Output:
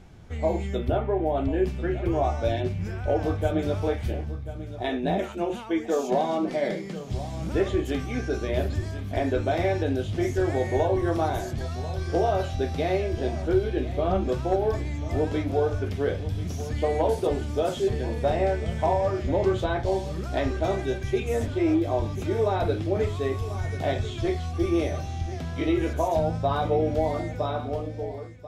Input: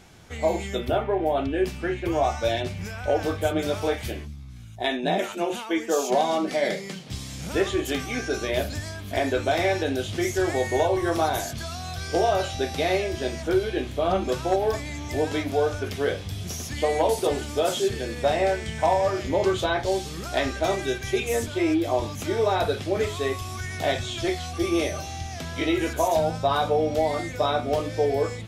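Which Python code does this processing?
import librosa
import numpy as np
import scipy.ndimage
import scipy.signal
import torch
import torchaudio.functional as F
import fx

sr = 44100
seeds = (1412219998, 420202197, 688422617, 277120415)

y = fx.fade_out_tail(x, sr, length_s=1.36)
y = fx.tilt_eq(y, sr, slope=-2.5)
y = y + 10.0 ** (-14.0 / 20.0) * np.pad(y, (int(1040 * sr / 1000.0), 0))[:len(y)]
y = y * 10.0 ** (-4.0 / 20.0)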